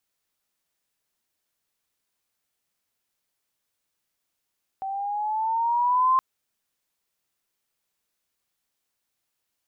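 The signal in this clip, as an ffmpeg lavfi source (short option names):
-f lavfi -i "aevalsrc='pow(10,(-16+12*(t/1.37-1))/20)*sin(2*PI*767*1.37/(5.5*log(2)/12)*(exp(5.5*log(2)/12*t/1.37)-1))':d=1.37:s=44100"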